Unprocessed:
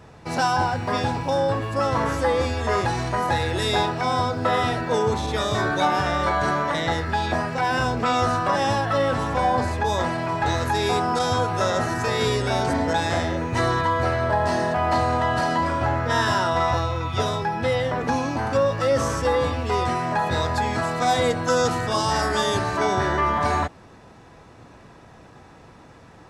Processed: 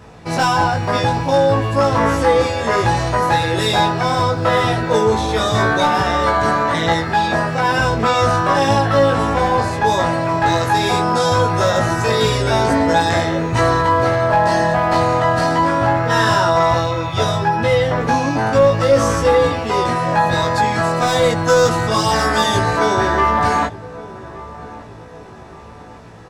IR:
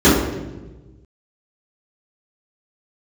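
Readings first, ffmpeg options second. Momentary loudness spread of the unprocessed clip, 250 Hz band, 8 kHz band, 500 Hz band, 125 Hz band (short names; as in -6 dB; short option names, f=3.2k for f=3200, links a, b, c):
3 LU, +6.5 dB, +6.0 dB, +7.5 dB, +6.5 dB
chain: -filter_complex "[0:a]aeval=exprs='clip(val(0),-1,0.168)':c=same,asplit=2[a][b];[b]adelay=18,volume=-2.5dB[c];[a][c]amix=inputs=2:normalize=0,asplit=2[d][e];[e]adelay=1169,lowpass=f=960:p=1,volume=-16.5dB,asplit=2[f][g];[g]adelay=1169,lowpass=f=960:p=1,volume=0.54,asplit=2[h][i];[i]adelay=1169,lowpass=f=960:p=1,volume=0.54,asplit=2[j][k];[k]adelay=1169,lowpass=f=960:p=1,volume=0.54,asplit=2[l][m];[m]adelay=1169,lowpass=f=960:p=1,volume=0.54[n];[d][f][h][j][l][n]amix=inputs=6:normalize=0,volume=4.5dB"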